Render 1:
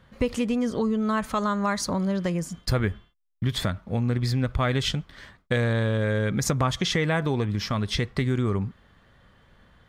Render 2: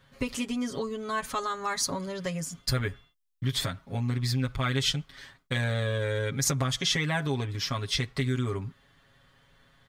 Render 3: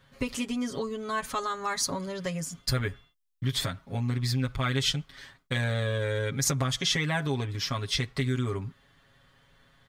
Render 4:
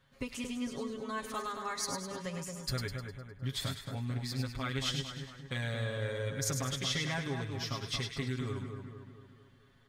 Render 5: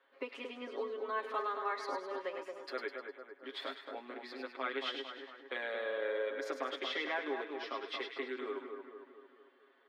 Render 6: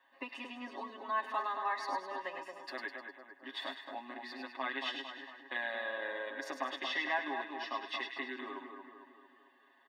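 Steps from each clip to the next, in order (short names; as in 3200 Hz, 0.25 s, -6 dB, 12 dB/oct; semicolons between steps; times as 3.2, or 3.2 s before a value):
high shelf 2200 Hz +9.5 dB; comb 7.3 ms, depth 91%; gain -8.5 dB
nothing audible
split-band echo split 1700 Hz, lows 0.226 s, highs 0.102 s, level -5.5 dB; gain -8 dB
steep high-pass 310 Hz 48 dB/oct; air absorption 410 m; gain +4 dB
comb 1.1 ms, depth 91%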